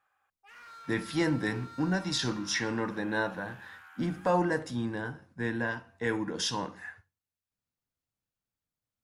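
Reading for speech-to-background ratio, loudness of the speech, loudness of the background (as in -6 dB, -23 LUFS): 18.0 dB, -32.0 LUFS, -50.0 LUFS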